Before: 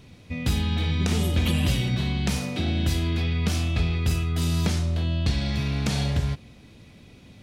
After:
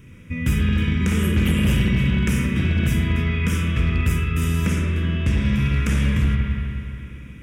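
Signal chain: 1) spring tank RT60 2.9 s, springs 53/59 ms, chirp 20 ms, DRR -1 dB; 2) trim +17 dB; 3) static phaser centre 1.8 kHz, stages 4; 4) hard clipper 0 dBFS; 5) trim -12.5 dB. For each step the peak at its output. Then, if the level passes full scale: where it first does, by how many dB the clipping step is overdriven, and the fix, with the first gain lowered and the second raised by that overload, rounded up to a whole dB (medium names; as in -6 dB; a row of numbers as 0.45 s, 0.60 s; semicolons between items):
-10.0 dBFS, +7.0 dBFS, +6.0 dBFS, 0.0 dBFS, -12.5 dBFS; step 2, 6.0 dB; step 2 +11 dB, step 5 -6.5 dB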